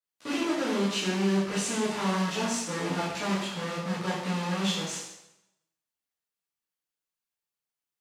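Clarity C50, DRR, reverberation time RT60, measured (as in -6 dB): 1.5 dB, -10.0 dB, 0.85 s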